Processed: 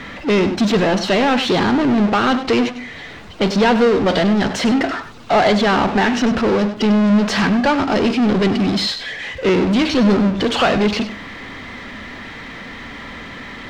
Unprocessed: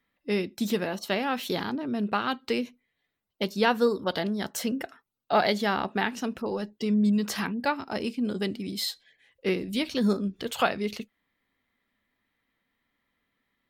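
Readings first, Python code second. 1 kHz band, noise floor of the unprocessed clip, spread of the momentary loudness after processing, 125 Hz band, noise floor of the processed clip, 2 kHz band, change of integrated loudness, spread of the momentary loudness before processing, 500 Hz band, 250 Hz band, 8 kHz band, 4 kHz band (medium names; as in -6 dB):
+11.5 dB, -80 dBFS, 18 LU, +14.0 dB, -34 dBFS, +12.0 dB, +12.0 dB, 8 LU, +12.0 dB, +13.0 dB, +8.0 dB, +11.5 dB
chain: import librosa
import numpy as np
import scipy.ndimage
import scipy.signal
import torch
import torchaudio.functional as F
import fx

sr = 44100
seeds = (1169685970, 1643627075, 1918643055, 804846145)

y = fx.power_curve(x, sr, exponent=0.35)
y = fx.air_absorb(y, sr, metres=140.0)
y = y + 10.0 ** (-12.0 / 20.0) * np.pad(y, (int(98 * sr / 1000.0), 0))[:len(y)]
y = y * librosa.db_to_amplitude(3.0)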